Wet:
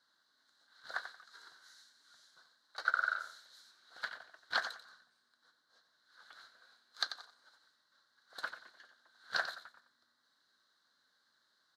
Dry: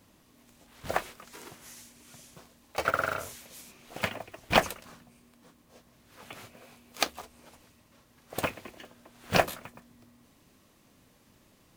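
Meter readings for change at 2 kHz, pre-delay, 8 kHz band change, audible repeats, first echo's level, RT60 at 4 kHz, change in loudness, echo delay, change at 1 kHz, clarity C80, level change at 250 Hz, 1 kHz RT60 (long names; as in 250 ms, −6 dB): −3.5 dB, no reverb audible, −16.0 dB, 2, −10.0 dB, no reverb audible, −8.0 dB, 90 ms, −10.0 dB, no reverb audible, −30.0 dB, no reverb audible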